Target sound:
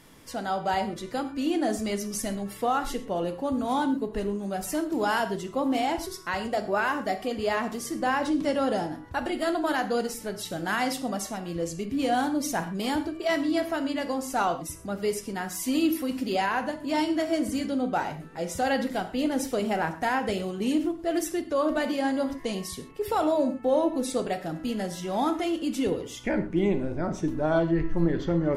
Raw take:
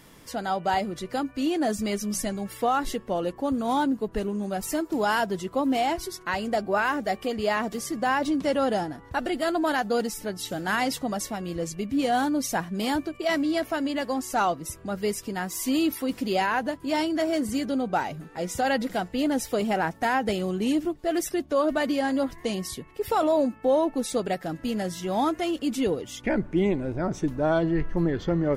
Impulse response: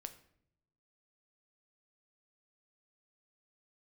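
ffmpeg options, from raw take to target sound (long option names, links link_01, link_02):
-filter_complex "[1:a]atrim=start_sample=2205,atrim=end_sample=3528,asetrate=25578,aresample=44100[link_01];[0:a][link_01]afir=irnorm=-1:irlink=0"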